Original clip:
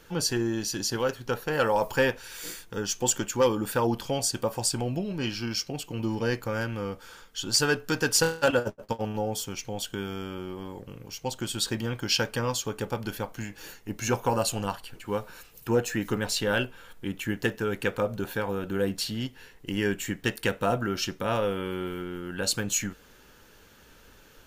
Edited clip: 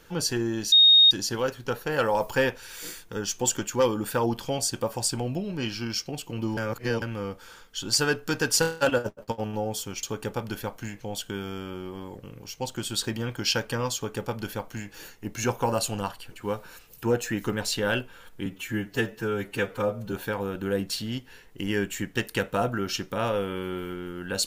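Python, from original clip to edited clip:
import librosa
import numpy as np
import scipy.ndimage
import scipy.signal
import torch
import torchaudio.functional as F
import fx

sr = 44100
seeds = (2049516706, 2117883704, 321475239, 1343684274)

y = fx.edit(x, sr, fx.insert_tone(at_s=0.72, length_s=0.39, hz=3720.0, db=-12.0),
    fx.reverse_span(start_s=6.18, length_s=0.45),
    fx.duplicate(start_s=12.59, length_s=0.97, to_s=9.64),
    fx.stretch_span(start_s=17.1, length_s=1.11, factor=1.5), tone=tone)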